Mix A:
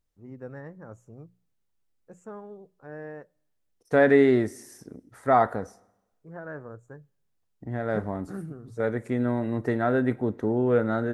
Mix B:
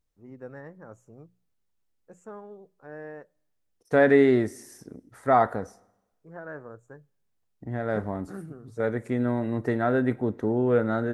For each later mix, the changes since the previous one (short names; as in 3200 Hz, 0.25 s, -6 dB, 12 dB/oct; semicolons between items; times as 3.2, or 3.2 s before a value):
first voice: add low shelf 140 Hz -9 dB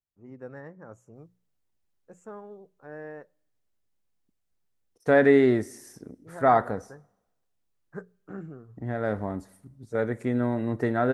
second voice: entry +1.15 s